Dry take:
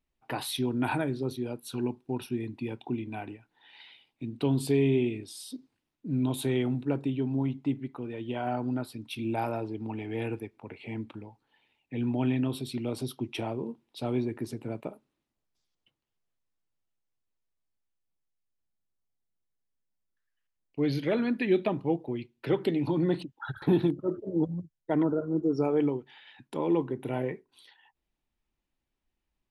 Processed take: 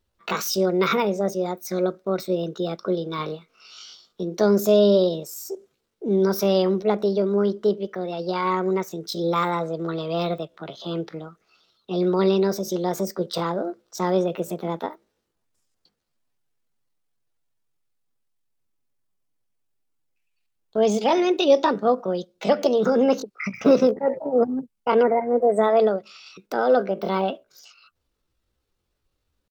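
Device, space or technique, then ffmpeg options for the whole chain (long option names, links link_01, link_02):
chipmunk voice: -filter_complex "[0:a]asettb=1/sr,asplit=3[link_01][link_02][link_03];[link_01]atrim=end=3.174[link_04];[link_02]atrim=start=3.17:end=4.25,asetpts=PTS-STARTPTS,afade=type=in:duration=0.004:curve=qsin,afade=type=out:start_time=1.076:duration=0.004:curve=qsin,asplit=2[link_05][link_06];[link_06]adelay=29,volume=-4.5dB[link_07];[link_05][link_07]amix=inputs=2:normalize=0,atrim=end_sample=47628[link_08];[link_03]atrim=start=4.246[link_09];[link_04][link_08]acrossfade=duration=0.004:curve1=hsin:curve2=qsin[link_10];[link_10][link_09]acrossfade=duration=0.004:curve1=qsin:curve2=hsin,asetrate=66075,aresample=44100,atempo=0.66742,volume=8dB"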